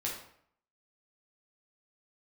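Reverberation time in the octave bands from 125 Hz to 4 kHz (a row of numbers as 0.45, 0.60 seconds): 0.70, 0.65, 0.65, 0.65, 0.60, 0.50 seconds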